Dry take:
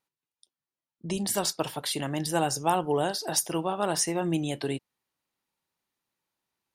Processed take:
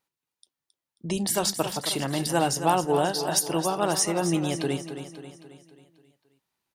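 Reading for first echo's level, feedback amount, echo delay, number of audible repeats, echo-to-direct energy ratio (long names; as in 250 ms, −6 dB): −10.0 dB, 51%, 269 ms, 5, −8.5 dB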